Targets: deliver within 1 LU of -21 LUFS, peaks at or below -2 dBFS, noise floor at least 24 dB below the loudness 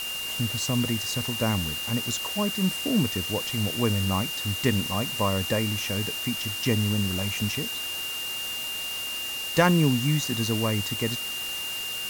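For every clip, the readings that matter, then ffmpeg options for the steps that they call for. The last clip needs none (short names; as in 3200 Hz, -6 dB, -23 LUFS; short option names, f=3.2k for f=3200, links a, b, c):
steady tone 2800 Hz; tone level -31 dBFS; noise floor -32 dBFS; noise floor target -50 dBFS; loudness -26.0 LUFS; peak -7.5 dBFS; loudness target -21.0 LUFS
-> -af "bandreject=f=2.8k:w=30"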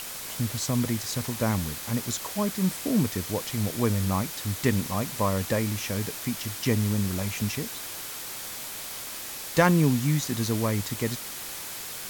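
steady tone none; noise floor -37 dBFS; noise floor target -52 dBFS
-> -af "afftdn=nr=15:nf=-37"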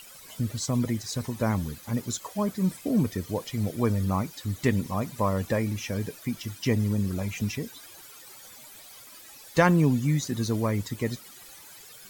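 noise floor -48 dBFS; noise floor target -52 dBFS
-> -af "afftdn=nr=6:nf=-48"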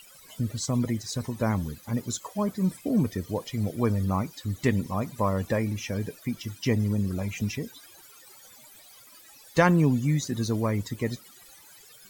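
noise floor -52 dBFS; loudness -28.0 LUFS; peak -8.0 dBFS; loudness target -21.0 LUFS
-> -af "volume=7dB,alimiter=limit=-2dB:level=0:latency=1"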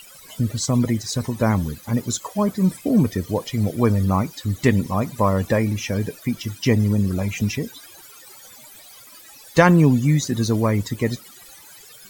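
loudness -21.0 LUFS; peak -2.0 dBFS; noise floor -45 dBFS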